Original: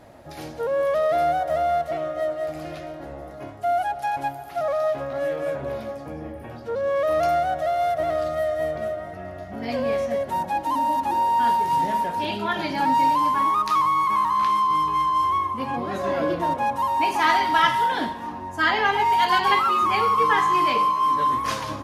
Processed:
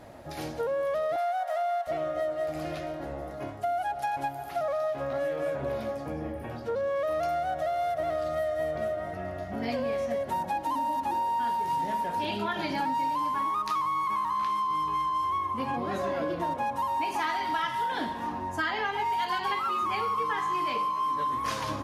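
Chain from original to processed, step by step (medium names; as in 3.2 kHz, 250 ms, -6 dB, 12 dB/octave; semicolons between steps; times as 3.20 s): 1.16–1.87 s: Chebyshev high-pass 680 Hz, order 4; compression, threshold -27 dBFS, peak gain reduction 12.5 dB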